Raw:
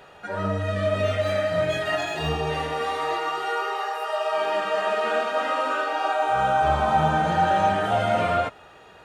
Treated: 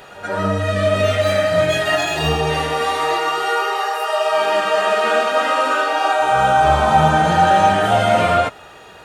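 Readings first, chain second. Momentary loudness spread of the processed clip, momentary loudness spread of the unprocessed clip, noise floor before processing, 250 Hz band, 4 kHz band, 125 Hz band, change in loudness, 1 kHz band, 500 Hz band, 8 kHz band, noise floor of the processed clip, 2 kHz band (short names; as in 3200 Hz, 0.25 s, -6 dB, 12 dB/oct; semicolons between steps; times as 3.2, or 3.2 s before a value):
6 LU, 6 LU, -49 dBFS, +7.0 dB, +9.5 dB, +7.0 dB, +7.5 dB, +7.5 dB, +7.0 dB, +12.5 dB, -41 dBFS, +8.0 dB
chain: high shelf 4700 Hz +7.5 dB; pre-echo 0.129 s -16 dB; gain +7 dB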